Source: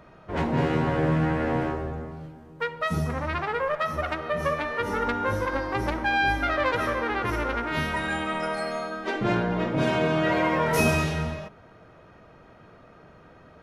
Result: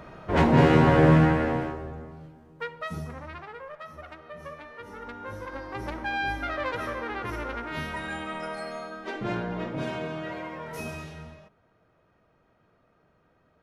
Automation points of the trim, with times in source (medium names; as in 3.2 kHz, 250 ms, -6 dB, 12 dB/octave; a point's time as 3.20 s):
1.16 s +6 dB
1.74 s -5.5 dB
2.67 s -5.5 dB
3.64 s -15 dB
4.94 s -15 dB
6.00 s -6 dB
9.65 s -6 dB
10.55 s -14.5 dB